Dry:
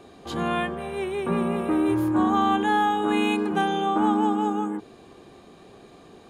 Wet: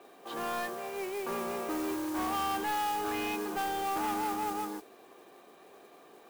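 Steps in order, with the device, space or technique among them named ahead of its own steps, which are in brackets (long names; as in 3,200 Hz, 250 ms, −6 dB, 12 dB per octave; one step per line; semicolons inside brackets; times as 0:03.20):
carbon microphone (band-pass filter 430–2,900 Hz; soft clipping −26 dBFS, distortion −10 dB; noise that follows the level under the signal 13 dB)
level −3 dB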